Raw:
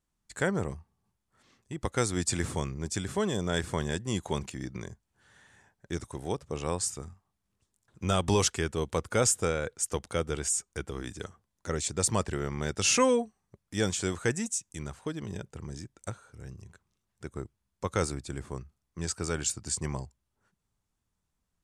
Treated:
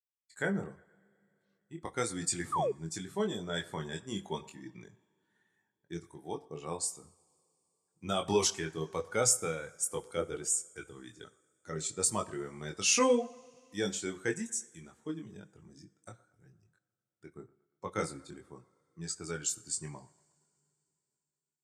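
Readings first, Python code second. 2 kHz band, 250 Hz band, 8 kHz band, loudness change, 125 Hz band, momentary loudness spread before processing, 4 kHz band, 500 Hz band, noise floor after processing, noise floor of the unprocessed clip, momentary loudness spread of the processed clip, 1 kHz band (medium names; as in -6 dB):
-4.0 dB, -5.0 dB, -2.0 dB, -2.5 dB, -10.0 dB, 17 LU, -3.0 dB, -3.5 dB, under -85 dBFS, -82 dBFS, 21 LU, -3.0 dB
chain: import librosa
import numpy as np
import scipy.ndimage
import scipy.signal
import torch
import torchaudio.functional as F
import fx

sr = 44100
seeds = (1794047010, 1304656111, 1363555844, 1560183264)

p1 = fx.bin_expand(x, sr, power=1.5)
p2 = scipy.signal.sosfilt(scipy.signal.butter(2, 170.0, 'highpass', fs=sr, output='sos'), p1)
p3 = fx.high_shelf(p2, sr, hz=8700.0, db=4.5)
p4 = fx.chorus_voices(p3, sr, voices=6, hz=0.81, base_ms=22, depth_ms=4.1, mix_pct=40)
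p5 = p4 + fx.echo_wet_bandpass(p4, sr, ms=117, feedback_pct=51, hz=990.0, wet_db=-21.5, dry=0)
p6 = fx.rev_double_slope(p5, sr, seeds[0], early_s=0.52, late_s=3.5, knee_db=-21, drr_db=15.5)
p7 = fx.spec_paint(p6, sr, seeds[1], shape='fall', start_s=2.52, length_s=0.2, low_hz=380.0, high_hz=1300.0, level_db=-32.0)
y = p7 * 10.0 ** (2.0 / 20.0)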